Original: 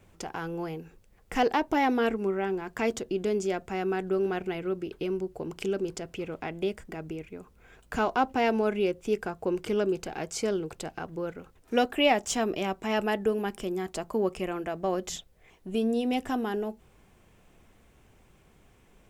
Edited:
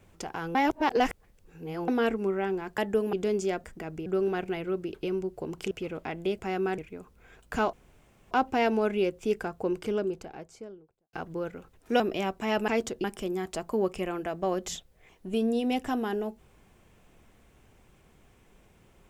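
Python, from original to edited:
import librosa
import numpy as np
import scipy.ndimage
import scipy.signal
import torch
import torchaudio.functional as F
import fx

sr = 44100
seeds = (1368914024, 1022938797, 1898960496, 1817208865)

y = fx.studio_fade_out(x, sr, start_s=9.28, length_s=1.67)
y = fx.edit(y, sr, fx.reverse_span(start_s=0.55, length_s=1.33),
    fx.swap(start_s=2.78, length_s=0.36, other_s=13.1, other_length_s=0.35),
    fx.swap(start_s=3.65, length_s=0.39, other_s=6.76, other_length_s=0.42),
    fx.cut(start_s=5.69, length_s=0.39),
    fx.insert_room_tone(at_s=8.13, length_s=0.58),
    fx.cut(start_s=11.82, length_s=0.6), tone=tone)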